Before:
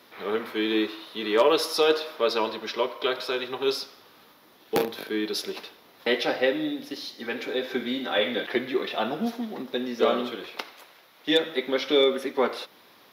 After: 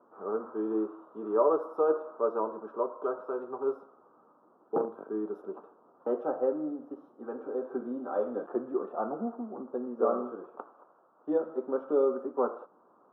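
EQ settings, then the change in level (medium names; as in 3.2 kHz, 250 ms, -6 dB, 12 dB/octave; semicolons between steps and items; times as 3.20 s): high-pass 200 Hz 12 dB/octave; elliptic low-pass 1.3 kHz, stop band 40 dB; -4.0 dB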